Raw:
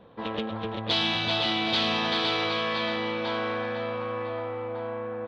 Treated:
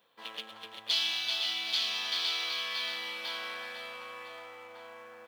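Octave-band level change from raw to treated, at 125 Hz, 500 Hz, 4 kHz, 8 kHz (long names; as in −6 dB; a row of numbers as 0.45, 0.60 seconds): below −30 dB, −18.5 dB, −2.5 dB, can't be measured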